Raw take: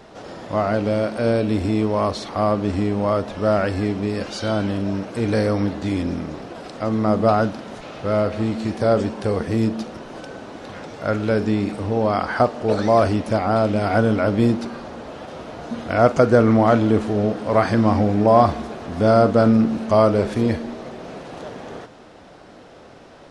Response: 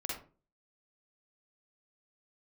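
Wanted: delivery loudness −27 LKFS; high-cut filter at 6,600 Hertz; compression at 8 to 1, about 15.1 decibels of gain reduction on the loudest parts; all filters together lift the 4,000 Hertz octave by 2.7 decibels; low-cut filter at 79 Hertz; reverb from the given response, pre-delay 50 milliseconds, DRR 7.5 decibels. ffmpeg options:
-filter_complex "[0:a]highpass=79,lowpass=6600,equalizer=frequency=4000:width_type=o:gain=4,acompressor=threshold=-25dB:ratio=8,asplit=2[link_01][link_02];[1:a]atrim=start_sample=2205,adelay=50[link_03];[link_02][link_03]afir=irnorm=-1:irlink=0,volume=-9.5dB[link_04];[link_01][link_04]amix=inputs=2:normalize=0,volume=3dB"

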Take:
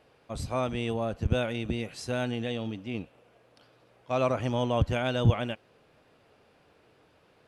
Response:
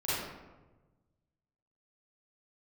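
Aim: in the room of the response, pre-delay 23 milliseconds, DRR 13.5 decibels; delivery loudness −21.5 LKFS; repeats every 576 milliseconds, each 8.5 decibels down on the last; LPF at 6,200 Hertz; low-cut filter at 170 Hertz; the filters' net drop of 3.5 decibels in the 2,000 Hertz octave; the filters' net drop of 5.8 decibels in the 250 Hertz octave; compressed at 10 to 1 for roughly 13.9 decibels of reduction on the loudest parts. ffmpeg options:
-filter_complex "[0:a]highpass=170,lowpass=6200,equalizer=frequency=250:width_type=o:gain=-5.5,equalizer=frequency=2000:width_type=o:gain=-5,acompressor=threshold=-38dB:ratio=10,aecho=1:1:576|1152|1728|2304:0.376|0.143|0.0543|0.0206,asplit=2[link_01][link_02];[1:a]atrim=start_sample=2205,adelay=23[link_03];[link_02][link_03]afir=irnorm=-1:irlink=0,volume=-21.5dB[link_04];[link_01][link_04]amix=inputs=2:normalize=0,volume=22dB"

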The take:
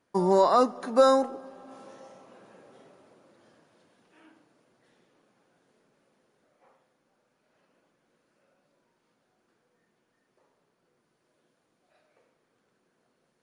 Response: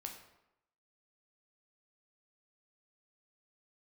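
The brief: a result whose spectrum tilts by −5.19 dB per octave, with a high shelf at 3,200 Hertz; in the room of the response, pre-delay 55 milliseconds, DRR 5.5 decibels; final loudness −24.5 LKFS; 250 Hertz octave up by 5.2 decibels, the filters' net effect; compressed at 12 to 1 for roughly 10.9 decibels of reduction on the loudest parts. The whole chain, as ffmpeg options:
-filter_complex "[0:a]equalizer=frequency=250:width_type=o:gain=6.5,highshelf=frequency=3200:gain=-6.5,acompressor=threshold=-24dB:ratio=12,asplit=2[link_01][link_02];[1:a]atrim=start_sample=2205,adelay=55[link_03];[link_02][link_03]afir=irnorm=-1:irlink=0,volume=-2.5dB[link_04];[link_01][link_04]amix=inputs=2:normalize=0,volume=6dB"

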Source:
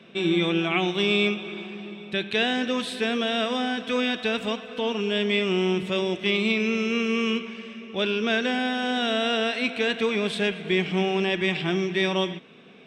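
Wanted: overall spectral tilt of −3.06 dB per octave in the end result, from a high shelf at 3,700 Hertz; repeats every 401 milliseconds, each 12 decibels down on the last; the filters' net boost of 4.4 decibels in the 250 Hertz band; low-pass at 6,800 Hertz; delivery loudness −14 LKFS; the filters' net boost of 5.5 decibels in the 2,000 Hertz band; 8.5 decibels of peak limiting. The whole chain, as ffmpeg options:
ffmpeg -i in.wav -af "lowpass=6800,equalizer=frequency=250:width_type=o:gain=5.5,equalizer=frequency=2000:width_type=o:gain=8.5,highshelf=frequency=3700:gain=-4,alimiter=limit=-15dB:level=0:latency=1,aecho=1:1:401|802|1203:0.251|0.0628|0.0157,volume=9.5dB" out.wav

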